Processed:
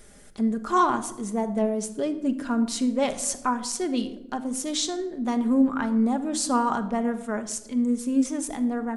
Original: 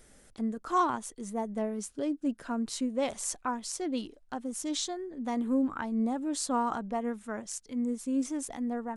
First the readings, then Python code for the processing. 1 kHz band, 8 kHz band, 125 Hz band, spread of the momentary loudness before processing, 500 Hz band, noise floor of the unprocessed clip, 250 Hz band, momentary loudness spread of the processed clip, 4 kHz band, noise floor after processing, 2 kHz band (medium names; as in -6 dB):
+6.0 dB, +6.5 dB, no reading, 8 LU, +6.5 dB, -59 dBFS, +7.5 dB, 7 LU, +7.0 dB, -46 dBFS, +7.0 dB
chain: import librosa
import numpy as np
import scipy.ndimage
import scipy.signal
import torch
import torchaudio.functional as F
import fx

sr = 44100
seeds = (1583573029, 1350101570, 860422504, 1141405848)

y = fx.room_shoebox(x, sr, seeds[0], volume_m3=3100.0, walls='furnished', distance_m=1.3)
y = y * 10.0 ** (6.0 / 20.0)